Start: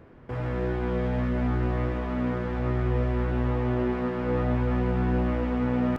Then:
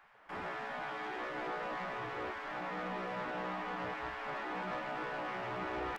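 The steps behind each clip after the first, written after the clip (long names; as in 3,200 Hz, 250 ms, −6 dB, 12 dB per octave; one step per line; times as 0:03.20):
gate on every frequency bin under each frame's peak −15 dB weak
soft clipping −32 dBFS, distortion −18 dB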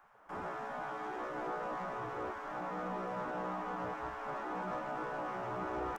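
flat-topped bell 2,900 Hz −9.5 dB
level +1 dB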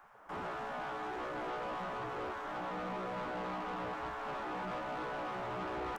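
soft clipping −40 dBFS, distortion −12 dB
level +4 dB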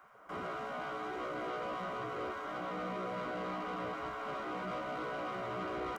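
notch comb filter 860 Hz
level +1.5 dB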